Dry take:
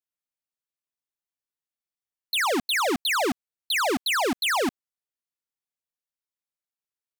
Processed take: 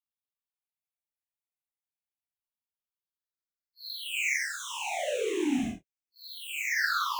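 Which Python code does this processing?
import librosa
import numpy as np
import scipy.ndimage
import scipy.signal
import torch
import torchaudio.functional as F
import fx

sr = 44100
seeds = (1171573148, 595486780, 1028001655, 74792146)

y = fx.phaser_stages(x, sr, stages=6, low_hz=360.0, high_hz=1300.0, hz=0.89, feedback_pct=25)
y = fx.paulstretch(y, sr, seeds[0], factor=6.6, window_s=0.05, from_s=1.74)
y = F.gain(torch.from_numpy(y), -5.0).numpy()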